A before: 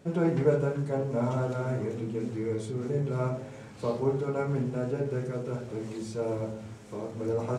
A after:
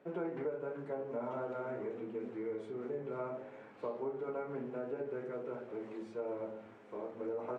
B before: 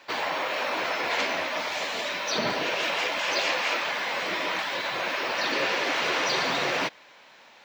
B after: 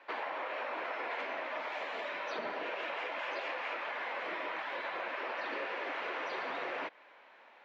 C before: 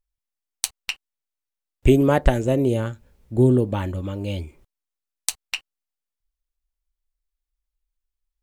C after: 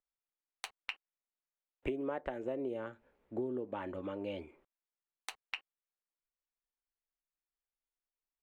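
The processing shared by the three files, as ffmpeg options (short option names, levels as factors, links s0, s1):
-filter_complex "[0:a]acrossover=split=260 2700:gain=0.0794 1 0.0708[s0][s1][s2];[s0][s1][s2]amix=inputs=3:normalize=0,acompressor=threshold=0.0282:ratio=6,volume=0.631"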